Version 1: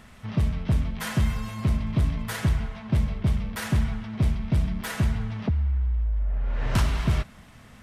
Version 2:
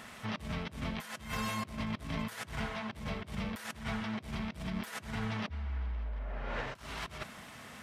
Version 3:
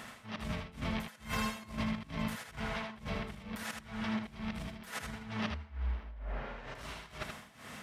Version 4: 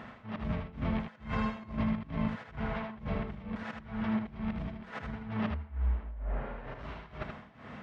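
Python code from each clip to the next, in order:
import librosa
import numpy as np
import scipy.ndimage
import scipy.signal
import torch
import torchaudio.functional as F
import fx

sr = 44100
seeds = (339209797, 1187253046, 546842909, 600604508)

y1 = fx.highpass(x, sr, hz=400.0, slope=6)
y1 = fx.over_compress(y1, sr, threshold_db=-39.0, ratio=-0.5)
y1 = y1 * librosa.db_to_amplitude(1.0)
y2 = y1 * (1.0 - 0.87 / 2.0 + 0.87 / 2.0 * np.cos(2.0 * np.pi * 2.2 * (np.arange(len(y1)) / sr)))
y2 = y2 + 10.0 ** (-5.5 / 20.0) * np.pad(y2, (int(78 * sr / 1000.0), 0))[:len(y2)]
y2 = y2 * librosa.db_to_amplitude(2.0)
y3 = fx.spacing_loss(y2, sr, db_at_10k=39)
y3 = y3 * librosa.db_to_amplitude(5.5)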